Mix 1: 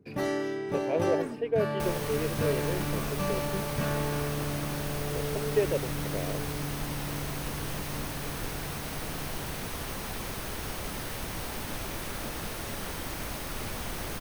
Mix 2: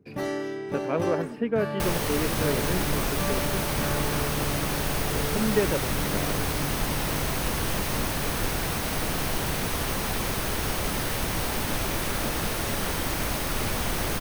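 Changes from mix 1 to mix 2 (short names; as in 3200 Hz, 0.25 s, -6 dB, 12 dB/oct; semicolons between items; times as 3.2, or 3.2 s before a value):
speech: remove fixed phaser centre 530 Hz, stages 4; second sound +8.0 dB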